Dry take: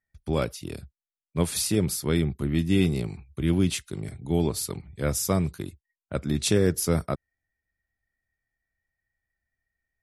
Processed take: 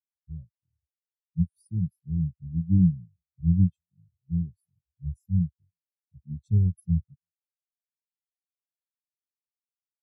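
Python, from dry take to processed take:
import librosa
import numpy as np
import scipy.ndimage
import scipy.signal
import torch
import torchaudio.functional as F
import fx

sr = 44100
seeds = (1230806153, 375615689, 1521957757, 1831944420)

p1 = fx.peak_eq(x, sr, hz=690.0, db=-14.5, octaves=3.0)
p2 = p1 + fx.echo_single(p1, sr, ms=330, db=-20.5, dry=0)
p3 = fx.spectral_expand(p2, sr, expansion=4.0)
y = p3 * 10.0 ** (3.0 / 20.0)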